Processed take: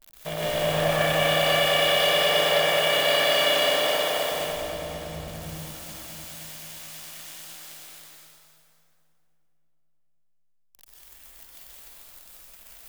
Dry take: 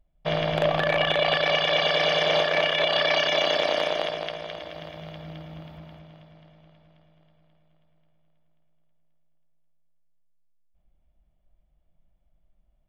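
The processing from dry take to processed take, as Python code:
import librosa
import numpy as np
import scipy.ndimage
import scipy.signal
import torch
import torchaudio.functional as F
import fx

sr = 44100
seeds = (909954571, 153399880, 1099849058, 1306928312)

y = x + 0.5 * 10.0 ** (-24.0 / 20.0) * np.diff(np.sign(x), prepend=np.sign(x[:1]))
y = fx.tilt_eq(y, sr, slope=-3.0, at=(4.31, 5.28))
y = fx.rev_plate(y, sr, seeds[0], rt60_s=2.5, hf_ratio=0.75, predelay_ms=110, drr_db=-7.0)
y = y * librosa.db_to_amplitude(-7.0)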